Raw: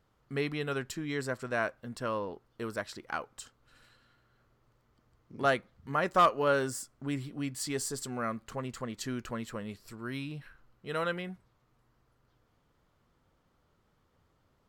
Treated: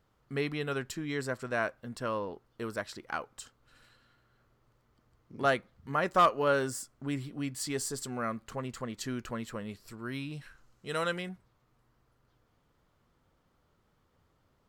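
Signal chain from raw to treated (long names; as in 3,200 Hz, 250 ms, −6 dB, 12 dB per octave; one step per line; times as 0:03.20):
0:10.32–0:11.29: parametric band 7,000 Hz +12.5 dB 1.2 octaves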